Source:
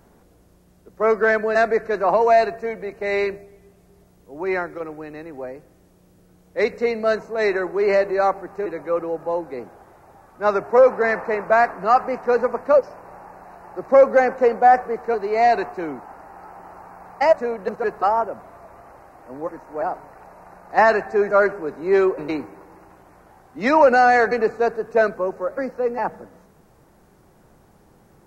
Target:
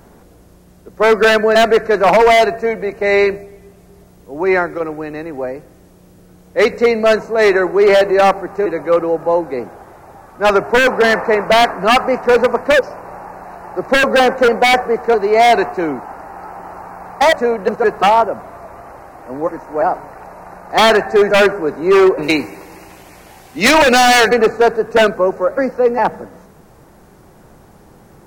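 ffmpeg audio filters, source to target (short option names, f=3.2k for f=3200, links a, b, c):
-filter_complex "[0:a]asplit=3[a][b][c];[a]afade=t=out:st=22.22:d=0.02[d];[b]highshelf=f=1.9k:t=q:w=1.5:g=10,afade=t=in:st=22.22:d=0.02,afade=t=out:st=24.28:d=0.02[e];[c]afade=t=in:st=24.28:d=0.02[f];[d][e][f]amix=inputs=3:normalize=0,asplit=2[g][h];[h]acontrast=56,volume=-1.5dB[i];[g][i]amix=inputs=2:normalize=0,aeval=exprs='0.531*(abs(mod(val(0)/0.531+3,4)-2)-1)':c=same,volume=1dB"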